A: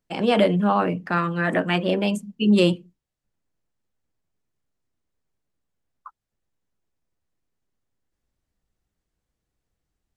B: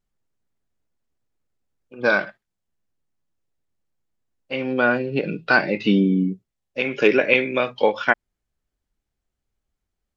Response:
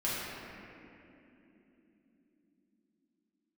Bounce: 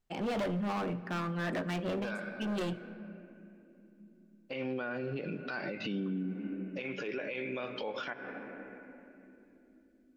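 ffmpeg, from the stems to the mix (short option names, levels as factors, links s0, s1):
-filter_complex "[0:a]highshelf=f=5700:g=-8,volume=11.9,asoftclip=hard,volume=0.0841,volume=0.355,asplit=3[s0][s1][s2];[s1]volume=0.0841[s3];[1:a]acompressor=threshold=0.158:ratio=6,volume=0.75,asplit=2[s4][s5];[s5]volume=0.0794[s6];[s2]apad=whole_len=448211[s7];[s4][s7]sidechaincompress=threshold=0.00708:ratio=8:attack=16:release=736[s8];[2:a]atrim=start_sample=2205[s9];[s3][s6]amix=inputs=2:normalize=0[s10];[s10][s9]afir=irnorm=-1:irlink=0[s11];[s0][s8][s11]amix=inputs=3:normalize=0,alimiter=level_in=1.68:limit=0.0631:level=0:latency=1:release=185,volume=0.596"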